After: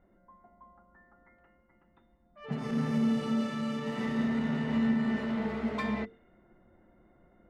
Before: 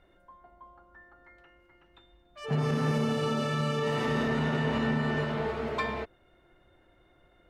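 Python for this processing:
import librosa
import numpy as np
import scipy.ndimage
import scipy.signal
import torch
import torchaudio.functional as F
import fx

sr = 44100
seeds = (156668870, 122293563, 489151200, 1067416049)

p1 = fx.env_lowpass(x, sr, base_hz=1200.0, full_db=-28.0)
p2 = 10.0 ** (-35.5 / 20.0) * np.tanh(p1 / 10.0 ** (-35.5 / 20.0))
p3 = p1 + (p2 * 10.0 ** (-4.0 / 20.0))
p4 = fx.hum_notches(p3, sr, base_hz=50, count=9)
p5 = fx.small_body(p4, sr, hz=(210.0, 2000.0), ring_ms=75, db=15)
p6 = fx.rider(p5, sr, range_db=10, speed_s=2.0)
y = p6 * 10.0 ** (-9.0 / 20.0)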